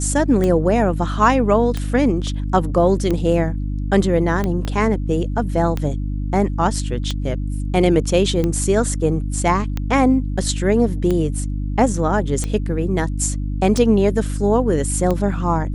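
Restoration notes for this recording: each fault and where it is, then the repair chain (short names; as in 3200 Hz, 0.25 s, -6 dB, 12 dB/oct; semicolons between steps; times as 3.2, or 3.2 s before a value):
hum 50 Hz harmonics 6 -23 dBFS
tick 45 rpm -10 dBFS
4.65 pop -13 dBFS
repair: de-click; de-hum 50 Hz, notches 6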